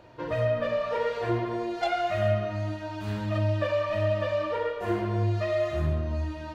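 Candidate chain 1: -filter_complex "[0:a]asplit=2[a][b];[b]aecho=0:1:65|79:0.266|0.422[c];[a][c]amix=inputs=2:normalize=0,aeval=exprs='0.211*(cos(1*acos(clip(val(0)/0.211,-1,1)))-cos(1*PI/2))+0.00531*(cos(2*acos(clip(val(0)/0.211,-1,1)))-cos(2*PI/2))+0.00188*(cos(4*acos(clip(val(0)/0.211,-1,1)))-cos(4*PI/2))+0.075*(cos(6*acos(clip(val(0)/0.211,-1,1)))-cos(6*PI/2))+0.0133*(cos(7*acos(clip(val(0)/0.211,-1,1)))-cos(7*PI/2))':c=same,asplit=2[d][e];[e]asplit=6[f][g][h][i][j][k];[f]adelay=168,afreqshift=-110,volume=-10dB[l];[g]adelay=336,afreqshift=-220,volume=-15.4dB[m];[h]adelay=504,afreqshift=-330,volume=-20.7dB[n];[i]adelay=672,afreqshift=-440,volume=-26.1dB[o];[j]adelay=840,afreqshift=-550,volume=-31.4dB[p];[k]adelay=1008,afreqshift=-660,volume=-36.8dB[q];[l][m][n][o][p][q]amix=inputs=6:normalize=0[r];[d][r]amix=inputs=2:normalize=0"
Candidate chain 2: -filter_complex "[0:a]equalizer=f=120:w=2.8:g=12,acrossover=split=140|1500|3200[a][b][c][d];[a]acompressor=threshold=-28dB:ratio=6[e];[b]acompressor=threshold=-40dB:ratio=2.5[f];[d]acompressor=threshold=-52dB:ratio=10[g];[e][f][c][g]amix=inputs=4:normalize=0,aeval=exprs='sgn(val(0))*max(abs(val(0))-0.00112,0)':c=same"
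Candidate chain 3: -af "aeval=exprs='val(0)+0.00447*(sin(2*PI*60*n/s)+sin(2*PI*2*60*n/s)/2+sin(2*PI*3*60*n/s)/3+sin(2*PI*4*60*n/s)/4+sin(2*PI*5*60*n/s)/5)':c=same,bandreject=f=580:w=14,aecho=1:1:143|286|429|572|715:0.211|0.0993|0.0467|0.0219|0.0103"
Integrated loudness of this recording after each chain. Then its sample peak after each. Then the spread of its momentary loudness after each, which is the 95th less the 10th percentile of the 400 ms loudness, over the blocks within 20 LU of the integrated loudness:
-24.5, -31.5, -29.0 LUFS; -9.0, -19.5, -14.5 dBFS; 6, 6, 5 LU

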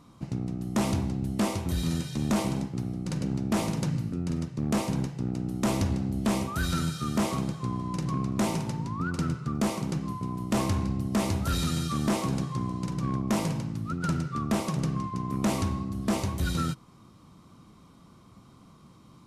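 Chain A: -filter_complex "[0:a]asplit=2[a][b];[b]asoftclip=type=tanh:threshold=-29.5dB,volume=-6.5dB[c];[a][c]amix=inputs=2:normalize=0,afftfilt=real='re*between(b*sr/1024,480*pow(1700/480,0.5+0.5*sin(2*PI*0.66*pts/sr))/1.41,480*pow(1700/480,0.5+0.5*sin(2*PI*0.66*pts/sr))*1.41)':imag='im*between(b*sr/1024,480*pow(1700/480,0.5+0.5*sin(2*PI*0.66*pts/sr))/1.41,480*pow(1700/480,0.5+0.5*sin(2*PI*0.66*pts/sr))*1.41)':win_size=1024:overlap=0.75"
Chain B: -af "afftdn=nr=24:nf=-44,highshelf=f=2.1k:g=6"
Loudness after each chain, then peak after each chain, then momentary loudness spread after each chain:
-39.5, -29.5 LUFS; -21.5, -16.0 dBFS; 13, 5 LU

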